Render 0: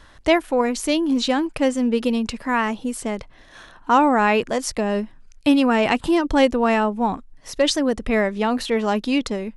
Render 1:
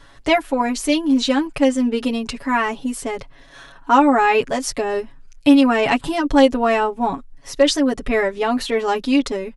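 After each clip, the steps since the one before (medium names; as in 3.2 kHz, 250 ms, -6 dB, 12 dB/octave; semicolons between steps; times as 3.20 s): comb 7.2 ms, depth 96%; trim -1 dB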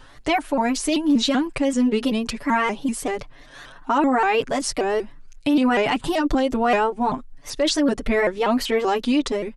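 peak limiter -11.5 dBFS, peak gain reduction 10 dB; vibrato with a chosen wave saw up 5.2 Hz, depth 160 cents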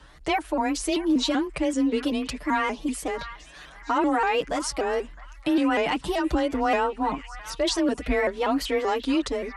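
repeats whose band climbs or falls 661 ms, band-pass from 1.4 kHz, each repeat 0.7 oct, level -11 dB; frequency shift +25 Hz; trim -4 dB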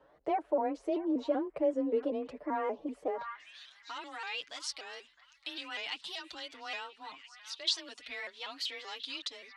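band-pass sweep 540 Hz -> 3.9 kHz, 3.10–3.60 s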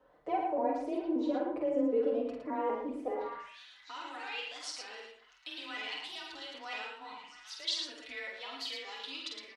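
multi-tap echo 48/112/165 ms -4/-5/-19.5 dB; reverberation, pre-delay 4 ms, DRR 3 dB; trim -4.5 dB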